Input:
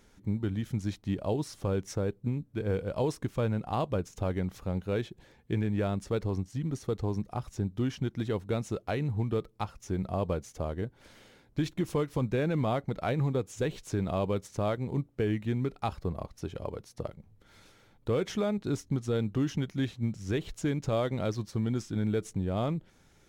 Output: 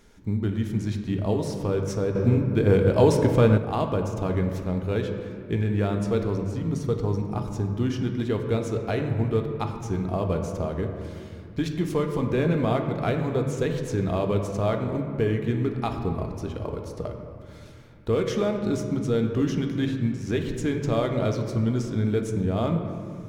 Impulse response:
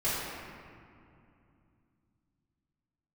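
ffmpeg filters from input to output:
-filter_complex "[0:a]asplit=2[a][b];[b]asuperstop=centerf=760:order=4:qfactor=7.9[c];[1:a]atrim=start_sample=2205,highshelf=f=8.7k:g=-10.5[d];[c][d]afir=irnorm=-1:irlink=0,volume=-11.5dB[e];[a][e]amix=inputs=2:normalize=0,asettb=1/sr,asplit=3[f][g][h];[f]atrim=end=2.154[i];[g]atrim=start=2.15:end=3.58,asetpts=PTS-STARTPTS,afade=t=in:d=0.004:c=qsin,afade=t=out:st=1.426:d=0.004:c=qsin,acontrast=69[j];[h]atrim=start=3.576[k];[i][j]acrossfade=d=0.004:c1=hsin:c2=qsin[l];[l][k]acrossfade=d=0.004:c1=qsin:c2=hsin,volume=2.5dB"

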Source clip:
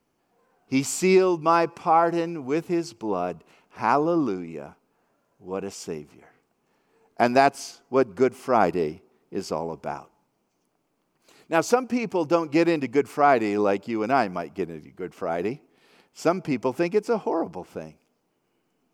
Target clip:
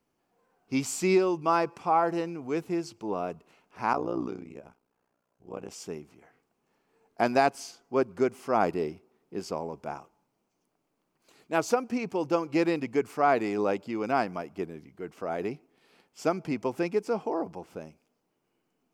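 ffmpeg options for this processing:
-filter_complex "[0:a]asettb=1/sr,asplit=3[a][b][c];[a]atrim=end=3.934[d];[b]atrim=start=3.93:end=5.71,asetpts=PTS-STARTPTS,afade=t=in:d=0.004:c=qsin,afade=t=out:st=1.776:d=0.004:c=qsin,tremolo=f=61:d=0.919[e];[c]atrim=start=5.706[f];[d][e]acrossfade=d=0.004:c1=hsin:c2=qsin[g];[g][f]acrossfade=d=0.004:c1=qsin:c2=hsin,volume=-5dB"

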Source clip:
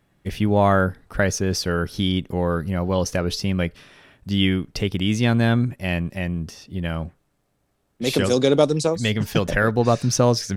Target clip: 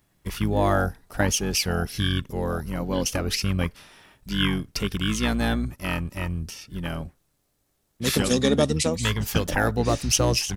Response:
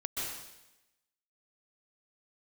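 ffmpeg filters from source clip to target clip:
-filter_complex "[0:a]asplit=2[a][b];[b]asetrate=22050,aresample=44100,atempo=2,volume=-2dB[c];[a][c]amix=inputs=2:normalize=0,crystalizer=i=2.5:c=0,volume=-6dB"

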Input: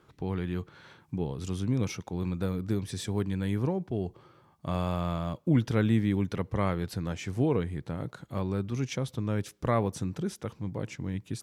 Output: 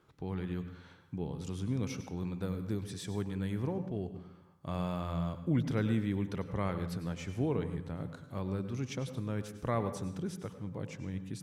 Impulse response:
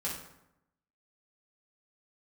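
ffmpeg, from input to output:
-filter_complex "[0:a]asplit=2[a][b];[1:a]atrim=start_sample=2205,adelay=94[c];[b][c]afir=irnorm=-1:irlink=0,volume=-13dB[d];[a][d]amix=inputs=2:normalize=0,volume=-6dB"

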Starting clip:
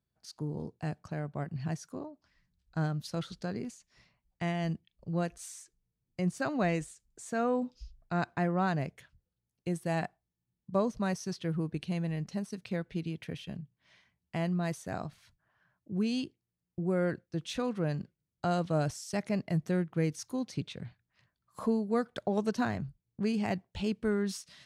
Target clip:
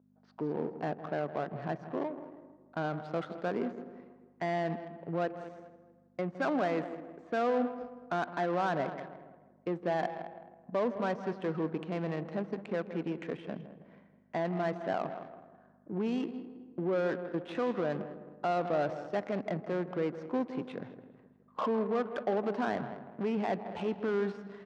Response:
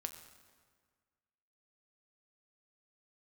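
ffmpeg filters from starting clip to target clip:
-filter_complex "[0:a]alimiter=level_in=4dB:limit=-24dB:level=0:latency=1:release=41,volume=-4dB,asplit=2[a][b];[b]aecho=0:1:212|424|636:0.158|0.0507|0.0162[c];[a][c]amix=inputs=2:normalize=0,aeval=exprs='val(0)+0.00141*(sin(2*PI*50*n/s)+sin(2*PI*2*50*n/s)/2+sin(2*PI*3*50*n/s)/3+sin(2*PI*4*50*n/s)/4+sin(2*PI*5*50*n/s)/5)':c=same,asplit=2[d][e];[e]highpass=f=720:p=1,volume=13dB,asoftclip=type=tanh:threshold=-26dB[f];[d][f]amix=inputs=2:normalize=0,lowpass=f=1k:p=1,volume=-6dB,asplit=2[g][h];[h]adelay=161,lowpass=f=3.9k:p=1,volume=-12dB,asplit=2[i][j];[j]adelay=161,lowpass=f=3.9k:p=1,volume=0.49,asplit=2[k][l];[l]adelay=161,lowpass=f=3.9k:p=1,volume=0.49,asplit=2[m][n];[n]adelay=161,lowpass=f=3.9k:p=1,volume=0.49,asplit=2[o][p];[p]adelay=161,lowpass=f=3.9k:p=1,volume=0.49[q];[g][i][k][m][o][q]amix=inputs=6:normalize=0,asplit=2[r][s];[1:a]atrim=start_sample=2205[t];[s][t]afir=irnorm=-1:irlink=0,volume=-4.5dB[u];[r][u]amix=inputs=2:normalize=0,adynamicsmooth=sensitivity=7:basefreq=880,highpass=270,lowpass=7.5k,volume=4.5dB"

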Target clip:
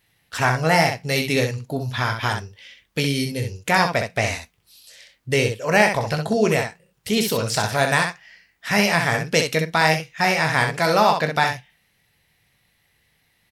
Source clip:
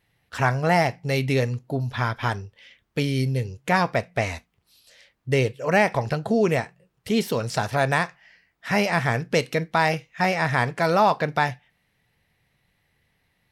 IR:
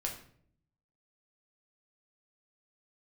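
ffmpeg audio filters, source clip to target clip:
-af "highshelf=f=2.6k:g=9.5,aecho=1:1:19|64:0.335|0.501"

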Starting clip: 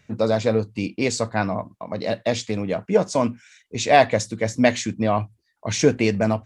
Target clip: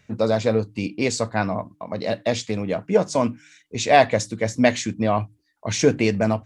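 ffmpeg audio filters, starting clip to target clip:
-af "bandreject=f=150.9:t=h:w=4,bandreject=f=301.8:t=h:w=4"

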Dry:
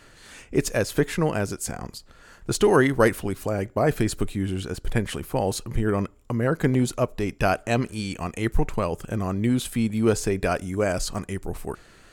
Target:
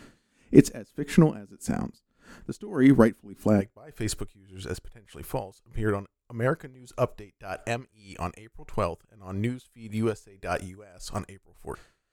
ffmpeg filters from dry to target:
-af "asetnsamples=n=441:p=0,asendcmd='3.61 equalizer g -4.5',equalizer=f=230:w=1.2:g=13.5,aeval=exprs='val(0)*pow(10,-28*(0.5-0.5*cos(2*PI*1.7*n/s))/20)':c=same"

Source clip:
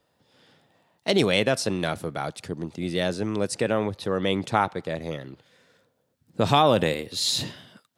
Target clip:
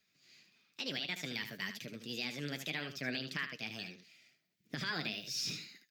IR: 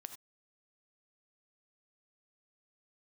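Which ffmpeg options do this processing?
-filter_complex "[0:a]acrossover=split=2900[a][b];[b]acompressor=threshold=-41dB:ratio=4:attack=1:release=60[c];[a][c]amix=inputs=2:normalize=0,firequalizer=gain_entry='entry(140,0);entry(630,-15);entry(1200,6);entry(1800,11);entry(3300,11);entry(7500,0);entry(12000,11)':delay=0.05:min_phase=1,alimiter=limit=-13dB:level=0:latency=1:release=291,flanger=delay=5.9:depth=5.7:regen=52:speed=1.3:shape=triangular,aecho=1:1:101:0.335,asetrate=59535,aresample=44100,volume=-7.5dB"

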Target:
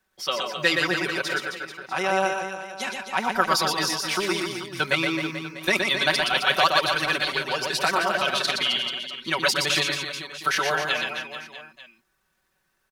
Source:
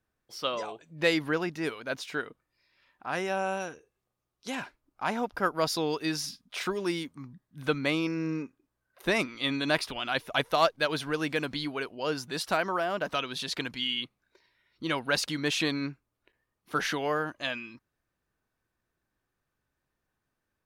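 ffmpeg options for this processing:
-filter_complex "[0:a]tiltshelf=f=630:g=-5,aecho=1:1:5.3:0.81,asplit=2[a][b];[b]acompressor=threshold=-41dB:ratio=4,volume=-1dB[c];[a][c]amix=inputs=2:normalize=0,atempo=1.6,acrossover=split=190|6900[d][e][f];[d]acrusher=samples=28:mix=1:aa=0.000001[g];[g][e][f]amix=inputs=3:normalize=0,aecho=1:1:120|264|436.8|644.2|893:0.631|0.398|0.251|0.158|0.1"

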